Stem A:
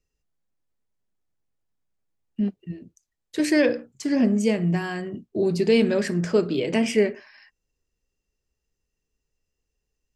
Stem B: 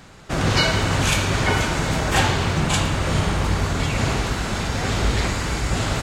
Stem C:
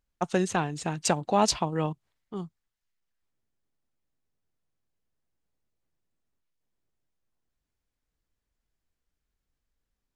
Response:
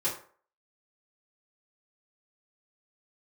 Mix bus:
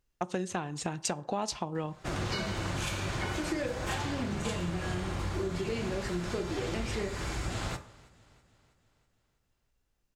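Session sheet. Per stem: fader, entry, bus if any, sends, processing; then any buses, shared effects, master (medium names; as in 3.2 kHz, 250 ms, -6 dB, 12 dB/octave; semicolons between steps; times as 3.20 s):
-9.5 dB, 0.00 s, send -7.5 dB, no echo send, none
-11.0 dB, 1.75 s, send -12 dB, echo send -23.5 dB, none
+1.5 dB, 0.00 s, send -21 dB, no echo send, none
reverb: on, RT60 0.45 s, pre-delay 3 ms
echo: feedback delay 325 ms, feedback 55%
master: compression 6:1, threshold -30 dBFS, peak gain reduction 13.5 dB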